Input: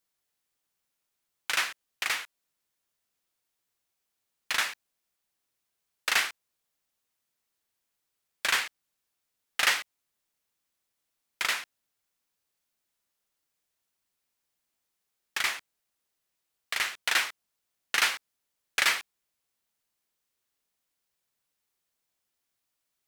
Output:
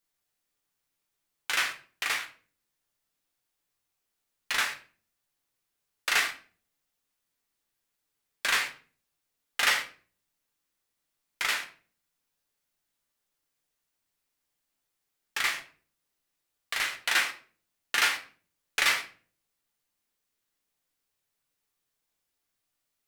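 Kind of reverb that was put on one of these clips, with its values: simulated room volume 32 m³, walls mixed, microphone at 0.39 m; trim -1.5 dB

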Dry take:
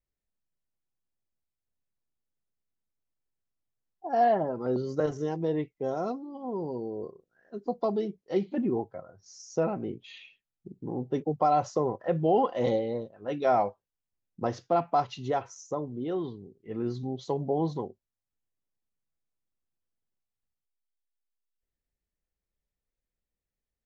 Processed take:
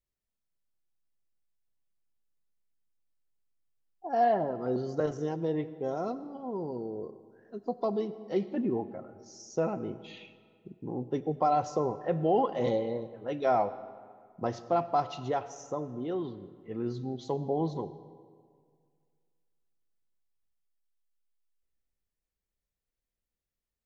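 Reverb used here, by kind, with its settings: algorithmic reverb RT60 2 s, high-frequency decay 0.65×, pre-delay 45 ms, DRR 14.5 dB; trim -2 dB

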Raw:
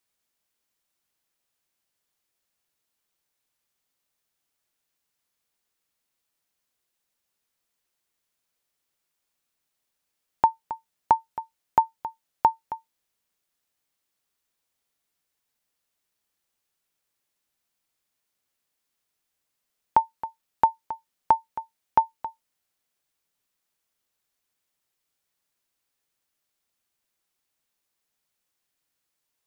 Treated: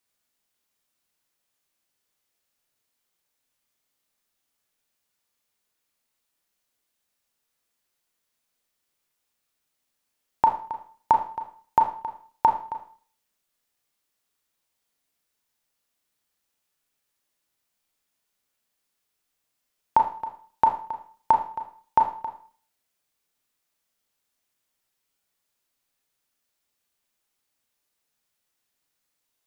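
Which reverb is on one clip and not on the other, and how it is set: Schroeder reverb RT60 0.45 s, combs from 26 ms, DRR 3 dB

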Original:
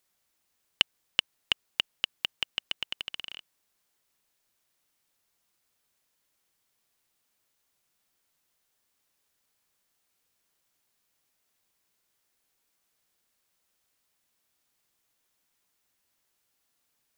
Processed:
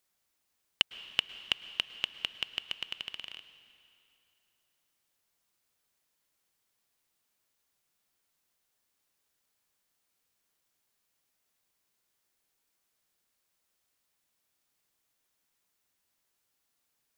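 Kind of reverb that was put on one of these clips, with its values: plate-style reverb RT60 2.8 s, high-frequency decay 0.9×, pre-delay 95 ms, DRR 13 dB; trim -3 dB

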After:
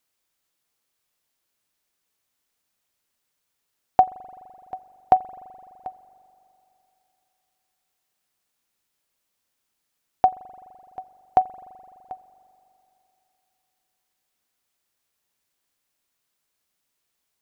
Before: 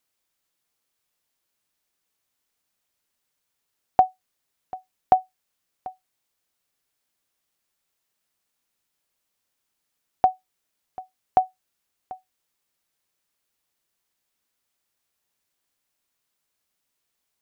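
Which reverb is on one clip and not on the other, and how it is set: spring tank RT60 3.1 s, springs 42 ms, chirp 45 ms, DRR 17.5 dB; trim +1 dB

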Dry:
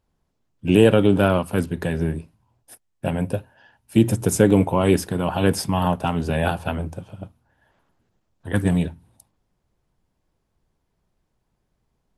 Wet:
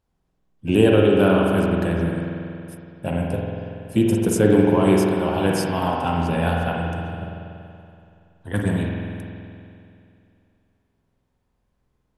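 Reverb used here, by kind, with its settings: spring tank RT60 2.6 s, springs 47 ms, chirp 45 ms, DRR -1.5 dB; trim -3 dB

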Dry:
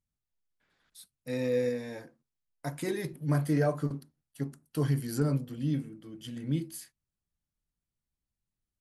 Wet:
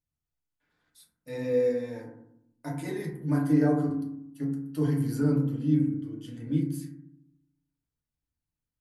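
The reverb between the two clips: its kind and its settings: FDN reverb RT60 0.73 s, low-frequency decay 1.55×, high-frequency decay 0.3×, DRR -3.5 dB; trim -6.5 dB

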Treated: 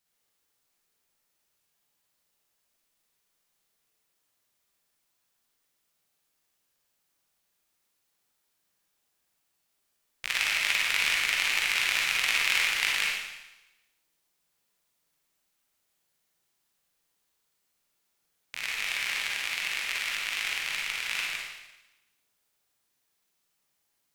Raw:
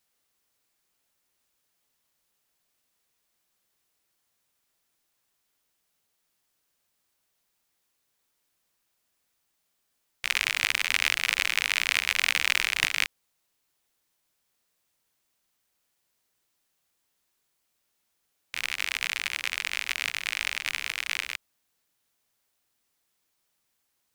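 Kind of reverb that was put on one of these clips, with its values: Schroeder reverb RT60 1 s, DRR -3 dB; trim -5 dB

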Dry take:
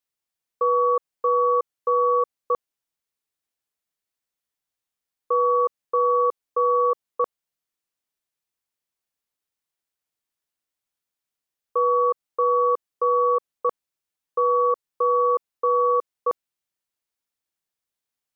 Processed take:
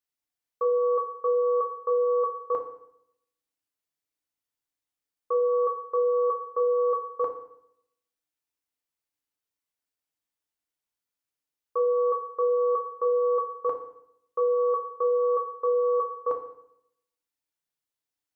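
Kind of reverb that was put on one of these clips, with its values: FDN reverb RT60 0.73 s, low-frequency decay 1.2×, high-frequency decay 0.9×, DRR 2.5 dB; trim -5.5 dB

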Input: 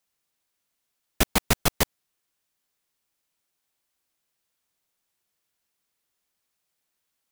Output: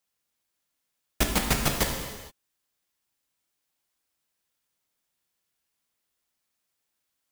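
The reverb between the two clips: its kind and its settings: gated-style reverb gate 490 ms falling, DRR 1.5 dB; trim -3.5 dB

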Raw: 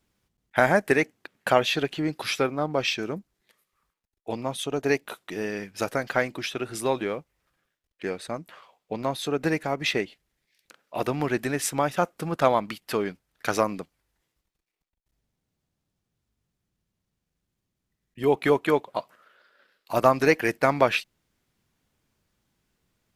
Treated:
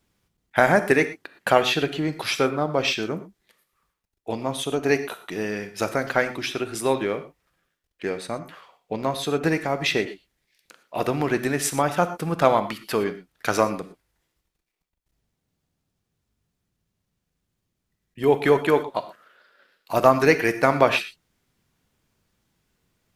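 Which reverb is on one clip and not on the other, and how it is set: gated-style reverb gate 140 ms flat, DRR 10 dB; trim +2.5 dB

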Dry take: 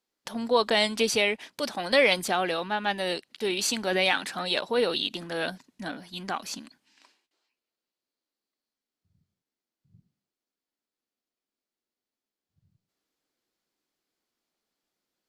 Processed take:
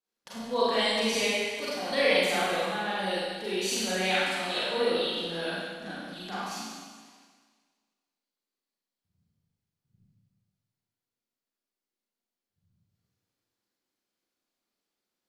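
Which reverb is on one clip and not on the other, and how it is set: Schroeder reverb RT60 1.6 s, combs from 32 ms, DRR -9 dB; trim -11 dB

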